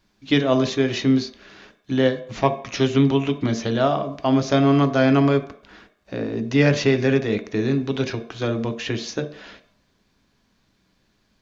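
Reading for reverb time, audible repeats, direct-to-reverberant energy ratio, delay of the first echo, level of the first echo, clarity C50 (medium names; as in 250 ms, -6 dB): 0.60 s, no echo, 7.0 dB, no echo, no echo, 12.5 dB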